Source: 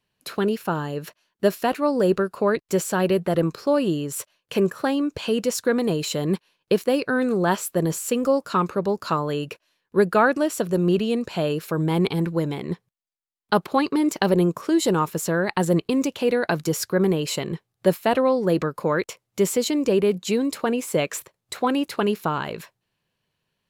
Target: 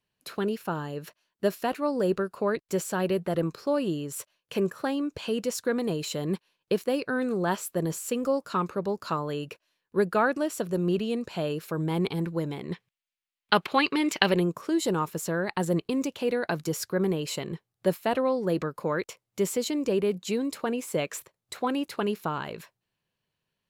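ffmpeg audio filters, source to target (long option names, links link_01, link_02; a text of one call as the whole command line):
ffmpeg -i in.wav -filter_complex "[0:a]asettb=1/sr,asplit=3[link_01][link_02][link_03];[link_01]atrim=end=12.724[link_04];[link_02]atrim=start=12.72:end=14.4,asetpts=PTS-STARTPTS,afade=type=in:duration=0.004:curve=qsin,afade=type=out:start_time=1.676:duration=0.004:curve=qsin,equalizer=frequency=2600:width_type=o:width=1.8:gain=14[link_05];[link_03]atrim=start=14.396[link_06];[link_04][link_05]acrossfade=duration=0.004:curve1=hsin:curve2=qsin[link_07];[link_07][link_06]acrossfade=duration=0.004:curve1=qsin:curve2=hsin,volume=-6dB" out.wav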